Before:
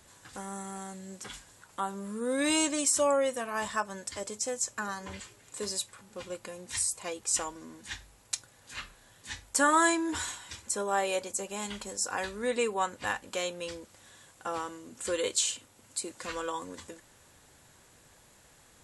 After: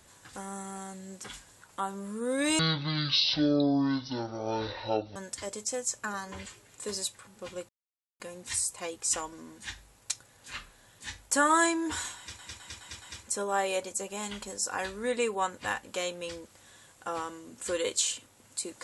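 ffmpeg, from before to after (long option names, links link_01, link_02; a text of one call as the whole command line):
ffmpeg -i in.wav -filter_complex "[0:a]asplit=8[link_01][link_02][link_03][link_04][link_05][link_06][link_07][link_08];[link_01]atrim=end=2.594[link_09];[link_02]atrim=start=2.59:end=3.9,asetpts=PTS-STARTPTS,asetrate=22491,aresample=44100,atrim=end_sample=113276,asetpts=PTS-STARTPTS[link_10];[link_03]atrim=start=3.896:end=6.43,asetpts=PTS-STARTPTS,afade=type=out:start_time=2.53:duration=0.004:curve=hsin,apad=pad_dur=0.51[link_11];[link_04]atrim=start=6.43:end=10.622,asetpts=PTS-STARTPTS,afade=type=in:duration=0.004:curve=hsin[link_12];[link_05]atrim=start=10.408:end=10.622[link_13];[link_06]atrim=start=10.408:end=10.622[link_14];[link_07]atrim=start=10.408:end=10.622[link_15];[link_08]atrim=start=10.408[link_16];[link_09][link_10]acrossfade=duration=0.004:curve1=hsin:curve2=hsin[link_17];[link_11][link_12]concat=n=2:v=0:a=1[link_18];[link_17][link_18]acrossfade=duration=0.004:curve1=hsin:curve2=hsin[link_19];[link_19][link_13]acrossfade=duration=0.004:curve1=hsin:curve2=hsin[link_20];[link_20][link_14]acrossfade=duration=0.004:curve1=hsin:curve2=hsin[link_21];[link_21][link_15]acrossfade=duration=0.004:curve1=hsin:curve2=hsin[link_22];[link_22][link_16]acrossfade=duration=0.004:curve1=hsin:curve2=hsin" out.wav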